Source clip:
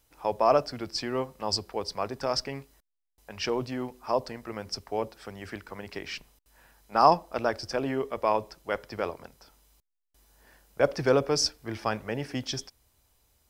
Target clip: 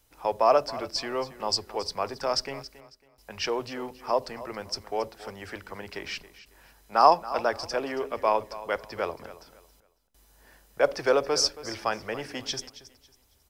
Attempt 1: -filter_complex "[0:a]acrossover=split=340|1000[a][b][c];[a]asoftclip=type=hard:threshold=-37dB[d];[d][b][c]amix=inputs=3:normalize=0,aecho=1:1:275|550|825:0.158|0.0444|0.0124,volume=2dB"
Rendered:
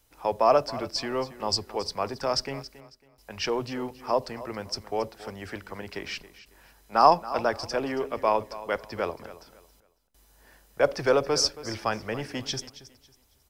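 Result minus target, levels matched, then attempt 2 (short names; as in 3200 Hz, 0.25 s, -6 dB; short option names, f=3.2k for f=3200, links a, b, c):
hard clip: distortion -5 dB
-filter_complex "[0:a]acrossover=split=340|1000[a][b][c];[a]asoftclip=type=hard:threshold=-47dB[d];[d][b][c]amix=inputs=3:normalize=0,aecho=1:1:275|550|825:0.158|0.0444|0.0124,volume=2dB"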